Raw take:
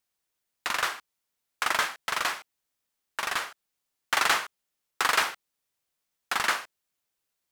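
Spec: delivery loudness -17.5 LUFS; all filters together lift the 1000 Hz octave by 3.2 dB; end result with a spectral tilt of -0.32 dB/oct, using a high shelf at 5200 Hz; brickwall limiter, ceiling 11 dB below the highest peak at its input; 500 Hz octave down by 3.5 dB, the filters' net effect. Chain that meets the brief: bell 500 Hz -7.5 dB; bell 1000 Hz +5.5 dB; high shelf 5200 Hz +3 dB; gain +13 dB; limiter -3.5 dBFS

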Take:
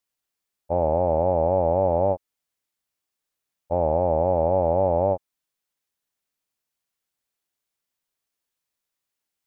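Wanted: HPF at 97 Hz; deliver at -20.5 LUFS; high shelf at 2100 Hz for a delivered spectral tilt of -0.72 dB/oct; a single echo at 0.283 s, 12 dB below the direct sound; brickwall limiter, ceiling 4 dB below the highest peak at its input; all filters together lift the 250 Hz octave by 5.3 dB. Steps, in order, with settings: HPF 97 Hz; bell 250 Hz +7.5 dB; high shelf 2100 Hz -8 dB; limiter -13.5 dBFS; echo 0.283 s -12 dB; gain +4.5 dB

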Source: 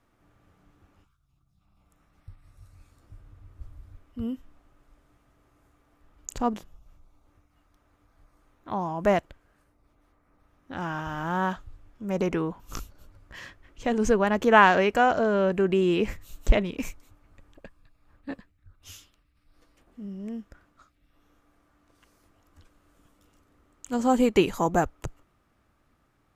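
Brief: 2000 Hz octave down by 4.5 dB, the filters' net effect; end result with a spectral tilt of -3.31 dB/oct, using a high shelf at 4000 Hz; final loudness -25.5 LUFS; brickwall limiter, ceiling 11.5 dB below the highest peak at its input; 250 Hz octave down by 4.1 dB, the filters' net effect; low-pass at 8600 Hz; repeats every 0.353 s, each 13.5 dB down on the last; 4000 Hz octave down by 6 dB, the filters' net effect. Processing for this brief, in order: LPF 8600 Hz; bell 250 Hz -5.5 dB; bell 2000 Hz -4.5 dB; high shelf 4000 Hz -4.5 dB; bell 4000 Hz -4 dB; limiter -17.5 dBFS; feedback echo 0.353 s, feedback 21%, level -13.5 dB; gain +5 dB

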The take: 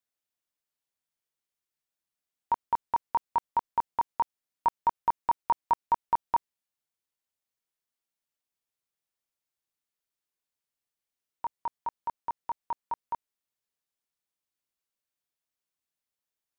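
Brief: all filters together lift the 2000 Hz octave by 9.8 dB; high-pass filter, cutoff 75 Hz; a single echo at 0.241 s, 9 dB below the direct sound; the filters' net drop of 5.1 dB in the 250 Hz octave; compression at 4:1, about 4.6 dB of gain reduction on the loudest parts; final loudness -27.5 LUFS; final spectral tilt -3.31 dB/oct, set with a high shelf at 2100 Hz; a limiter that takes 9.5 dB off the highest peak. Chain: HPF 75 Hz; bell 250 Hz -7.5 dB; bell 2000 Hz +8.5 dB; high shelf 2100 Hz +8.5 dB; compressor 4:1, threshold -24 dBFS; limiter -23.5 dBFS; echo 0.241 s -9 dB; gain +10 dB

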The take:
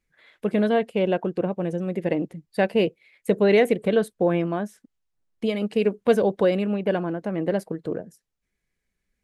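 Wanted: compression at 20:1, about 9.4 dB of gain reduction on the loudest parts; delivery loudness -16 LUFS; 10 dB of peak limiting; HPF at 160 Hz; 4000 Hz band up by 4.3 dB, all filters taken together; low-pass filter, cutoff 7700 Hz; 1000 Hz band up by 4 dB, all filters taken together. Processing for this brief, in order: HPF 160 Hz; LPF 7700 Hz; bell 1000 Hz +6 dB; bell 4000 Hz +6 dB; compressor 20:1, threshold -21 dBFS; gain +16 dB; limiter -5 dBFS

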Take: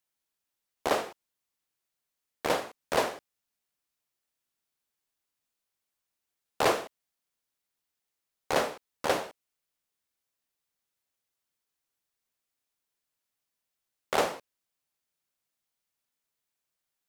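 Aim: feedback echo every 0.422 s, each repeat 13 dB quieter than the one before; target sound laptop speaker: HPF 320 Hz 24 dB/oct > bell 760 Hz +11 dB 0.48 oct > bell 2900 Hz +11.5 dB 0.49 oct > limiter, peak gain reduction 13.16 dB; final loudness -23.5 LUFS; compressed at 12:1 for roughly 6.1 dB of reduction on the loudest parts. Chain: compressor 12:1, threshold -26 dBFS; HPF 320 Hz 24 dB/oct; bell 760 Hz +11 dB 0.48 oct; bell 2900 Hz +11.5 dB 0.49 oct; feedback echo 0.422 s, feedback 22%, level -13 dB; gain +14.5 dB; limiter -9 dBFS

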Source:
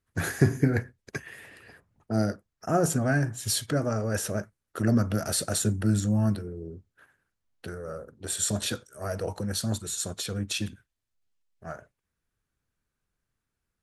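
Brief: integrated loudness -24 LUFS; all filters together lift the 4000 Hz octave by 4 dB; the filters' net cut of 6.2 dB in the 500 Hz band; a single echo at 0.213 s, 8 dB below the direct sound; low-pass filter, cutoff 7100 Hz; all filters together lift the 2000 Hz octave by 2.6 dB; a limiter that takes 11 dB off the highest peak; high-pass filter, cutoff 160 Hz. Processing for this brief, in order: HPF 160 Hz; LPF 7100 Hz; bell 500 Hz -8.5 dB; bell 2000 Hz +3.5 dB; bell 4000 Hz +4.5 dB; limiter -21.5 dBFS; echo 0.213 s -8 dB; gain +9 dB

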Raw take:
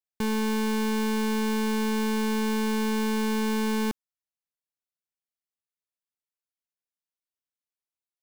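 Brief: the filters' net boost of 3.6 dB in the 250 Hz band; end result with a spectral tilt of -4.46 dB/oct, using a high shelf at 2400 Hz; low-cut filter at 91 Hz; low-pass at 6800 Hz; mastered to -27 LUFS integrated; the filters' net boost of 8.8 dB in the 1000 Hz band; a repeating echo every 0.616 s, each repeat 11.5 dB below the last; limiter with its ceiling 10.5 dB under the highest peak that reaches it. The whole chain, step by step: HPF 91 Hz; LPF 6800 Hz; bell 250 Hz +4 dB; bell 1000 Hz +9 dB; high shelf 2400 Hz +5.5 dB; limiter -24.5 dBFS; feedback echo 0.616 s, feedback 27%, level -11.5 dB; gain +6.5 dB

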